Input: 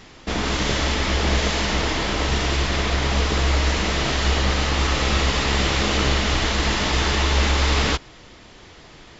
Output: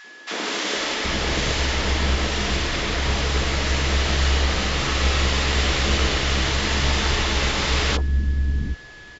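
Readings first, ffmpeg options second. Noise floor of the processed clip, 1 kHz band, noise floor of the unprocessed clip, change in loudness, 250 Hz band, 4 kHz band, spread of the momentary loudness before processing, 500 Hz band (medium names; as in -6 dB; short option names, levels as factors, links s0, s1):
-43 dBFS, -2.5 dB, -46 dBFS, -1.0 dB, -2.5 dB, 0.0 dB, 3 LU, -1.5 dB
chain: -filter_complex "[0:a]acrossover=split=260|860[s0][s1][s2];[s1]adelay=40[s3];[s0]adelay=770[s4];[s4][s3][s2]amix=inputs=3:normalize=0,aeval=exprs='val(0)+0.00794*sin(2*PI*1700*n/s)':c=same"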